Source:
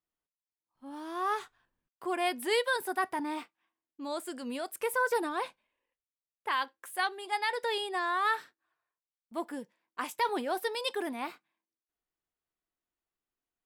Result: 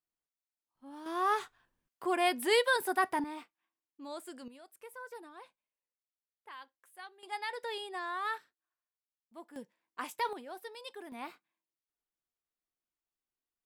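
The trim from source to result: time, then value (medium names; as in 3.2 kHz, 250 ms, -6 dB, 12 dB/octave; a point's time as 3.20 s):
-5 dB
from 1.06 s +1.5 dB
from 3.24 s -7 dB
from 4.48 s -18 dB
from 7.23 s -7 dB
from 8.38 s -14 dB
from 9.56 s -4 dB
from 10.33 s -13 dB
from 11.12 s -6 dB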